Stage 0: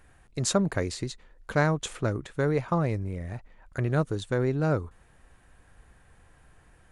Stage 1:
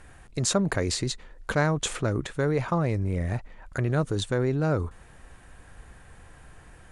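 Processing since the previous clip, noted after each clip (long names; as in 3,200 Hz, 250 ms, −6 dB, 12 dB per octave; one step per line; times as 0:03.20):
Chebyshev low-pass filter 9,900 Hz, order 2
in parallel at −1.5 dB: compressor whose output falls as the input rises −35 dBFS, ratio −1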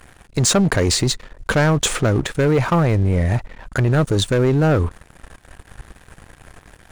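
leveller curve on the samples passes 3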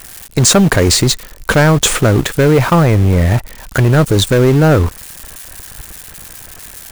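spike at every zero crossing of −24 dBFS
in parallel at −8 dB: bit reduction 4 bits
on the sum: level +3.5 dB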